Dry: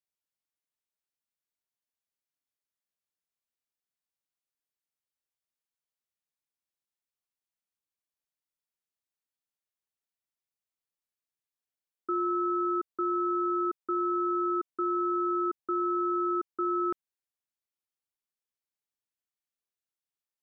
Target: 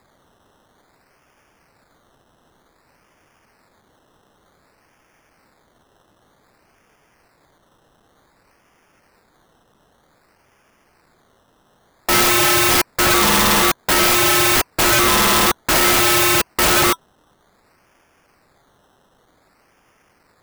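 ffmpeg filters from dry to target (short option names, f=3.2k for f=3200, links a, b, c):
-af "bandreject=f=990:w=30,acrusher=samples=15:mix=1:aa=0.000001:lfo=1:lforange=9:lforate=0.54,apsyclip=32dB,aeval=exprs='(mod(5.01*val(0)+1,2)-1)/5.01':c=same,volume=3dB"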